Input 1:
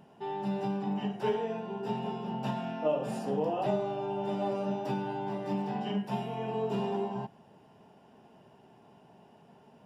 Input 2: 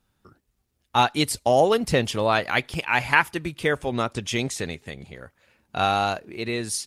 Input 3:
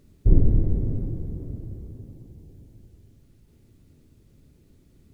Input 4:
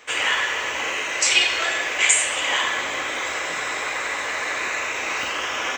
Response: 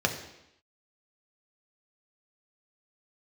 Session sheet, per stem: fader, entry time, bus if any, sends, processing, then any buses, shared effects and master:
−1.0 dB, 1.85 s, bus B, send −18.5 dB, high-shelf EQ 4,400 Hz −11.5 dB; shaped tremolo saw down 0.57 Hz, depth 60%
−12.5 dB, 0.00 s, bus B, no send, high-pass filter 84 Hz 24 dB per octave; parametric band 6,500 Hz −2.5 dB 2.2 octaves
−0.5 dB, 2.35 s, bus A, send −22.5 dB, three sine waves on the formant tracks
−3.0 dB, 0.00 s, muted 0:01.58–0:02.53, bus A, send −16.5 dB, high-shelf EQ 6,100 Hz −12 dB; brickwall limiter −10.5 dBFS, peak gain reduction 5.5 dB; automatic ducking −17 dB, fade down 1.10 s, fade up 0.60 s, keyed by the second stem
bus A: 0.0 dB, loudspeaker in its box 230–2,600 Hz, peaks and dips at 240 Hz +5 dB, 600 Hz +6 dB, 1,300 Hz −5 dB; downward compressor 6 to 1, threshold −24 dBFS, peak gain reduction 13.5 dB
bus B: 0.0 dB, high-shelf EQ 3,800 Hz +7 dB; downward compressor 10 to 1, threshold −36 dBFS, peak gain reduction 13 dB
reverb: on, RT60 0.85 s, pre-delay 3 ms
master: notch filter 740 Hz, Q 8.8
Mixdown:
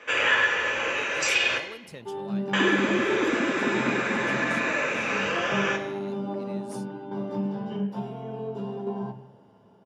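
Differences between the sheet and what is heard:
stem 2 −12.5 dB → −21.5 dB
stem 3: send off
reverb return +8.0 dB

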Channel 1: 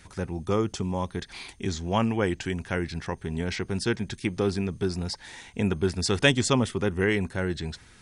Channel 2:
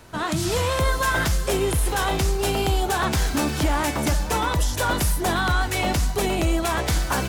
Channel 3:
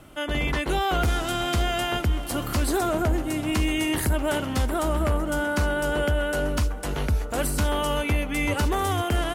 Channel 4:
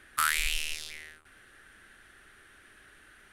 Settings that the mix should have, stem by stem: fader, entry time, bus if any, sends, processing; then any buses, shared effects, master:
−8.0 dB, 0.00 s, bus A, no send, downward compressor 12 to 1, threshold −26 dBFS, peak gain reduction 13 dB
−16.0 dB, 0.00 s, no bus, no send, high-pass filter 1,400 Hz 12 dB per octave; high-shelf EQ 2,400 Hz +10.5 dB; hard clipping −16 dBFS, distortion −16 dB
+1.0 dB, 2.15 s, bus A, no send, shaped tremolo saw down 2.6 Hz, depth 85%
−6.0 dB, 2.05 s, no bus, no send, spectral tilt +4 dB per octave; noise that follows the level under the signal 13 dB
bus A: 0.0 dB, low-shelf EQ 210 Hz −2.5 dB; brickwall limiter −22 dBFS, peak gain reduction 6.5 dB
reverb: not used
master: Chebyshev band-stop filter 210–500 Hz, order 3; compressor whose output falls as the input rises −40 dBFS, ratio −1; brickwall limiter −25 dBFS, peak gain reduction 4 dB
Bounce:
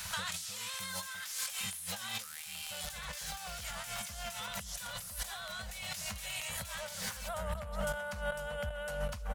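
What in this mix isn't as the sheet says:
stem 2 −16.0 dB → −5.0 dB
stem 3: entry 2.15 s → 2.55 s

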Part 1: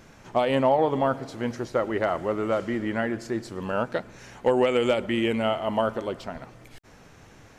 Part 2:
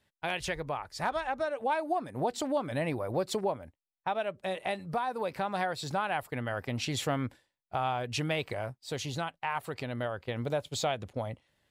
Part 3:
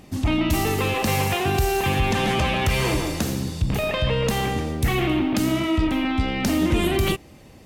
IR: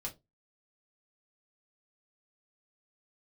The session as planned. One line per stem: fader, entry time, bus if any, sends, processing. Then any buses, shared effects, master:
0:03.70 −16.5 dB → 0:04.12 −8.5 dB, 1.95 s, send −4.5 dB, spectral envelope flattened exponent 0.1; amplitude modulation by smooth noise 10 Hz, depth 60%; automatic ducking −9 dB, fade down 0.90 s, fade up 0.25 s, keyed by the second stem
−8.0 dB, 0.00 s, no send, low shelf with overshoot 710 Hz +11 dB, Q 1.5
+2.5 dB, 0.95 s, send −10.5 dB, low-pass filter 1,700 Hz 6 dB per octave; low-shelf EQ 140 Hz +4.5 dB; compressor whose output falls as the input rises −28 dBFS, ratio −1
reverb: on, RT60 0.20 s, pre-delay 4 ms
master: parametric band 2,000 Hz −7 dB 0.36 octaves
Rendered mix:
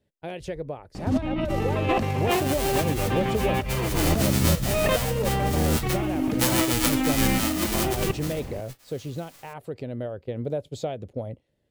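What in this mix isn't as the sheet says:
stem 1 −16.5 dB → −6.5 dB
stem 3: send off
master: missing parametric band 2,000 Hz −7 dB 0.36 octaves

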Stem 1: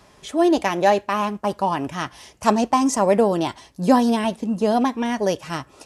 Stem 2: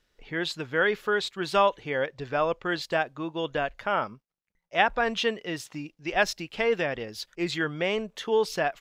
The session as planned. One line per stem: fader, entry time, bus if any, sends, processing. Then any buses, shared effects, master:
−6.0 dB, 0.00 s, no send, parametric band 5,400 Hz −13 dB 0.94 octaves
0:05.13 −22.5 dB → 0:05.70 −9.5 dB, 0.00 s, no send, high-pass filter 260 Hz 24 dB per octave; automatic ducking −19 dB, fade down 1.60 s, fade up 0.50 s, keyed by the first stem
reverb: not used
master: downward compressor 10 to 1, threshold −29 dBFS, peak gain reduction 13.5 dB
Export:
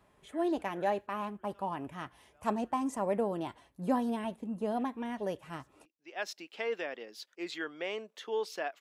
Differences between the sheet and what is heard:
stem 1 −6.0 dB → −14.0 dB
master: missing downward compressor 10 to 1, threshold −29 dBFS, peak gain reduction 13.5 dB

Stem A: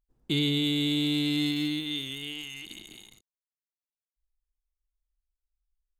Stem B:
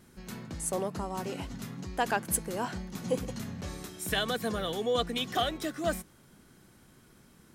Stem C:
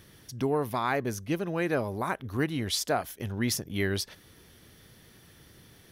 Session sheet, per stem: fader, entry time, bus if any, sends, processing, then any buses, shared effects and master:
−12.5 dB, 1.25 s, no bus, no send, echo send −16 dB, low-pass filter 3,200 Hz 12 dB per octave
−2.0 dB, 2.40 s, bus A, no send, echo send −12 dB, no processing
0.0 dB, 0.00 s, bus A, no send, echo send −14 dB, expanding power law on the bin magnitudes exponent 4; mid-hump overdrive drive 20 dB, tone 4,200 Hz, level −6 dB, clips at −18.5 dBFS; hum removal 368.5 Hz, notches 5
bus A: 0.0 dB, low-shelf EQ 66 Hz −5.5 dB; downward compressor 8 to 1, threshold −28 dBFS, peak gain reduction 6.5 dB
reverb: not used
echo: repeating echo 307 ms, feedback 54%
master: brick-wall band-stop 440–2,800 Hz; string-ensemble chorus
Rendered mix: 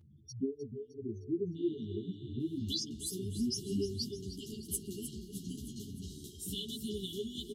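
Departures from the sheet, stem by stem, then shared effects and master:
stem A −12.5 dB → −23.0 dB
stem C: missing mid-hump overdrive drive 20 dB, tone 4,200 Hz, level −6 dB, clips at −18.5 dBFS

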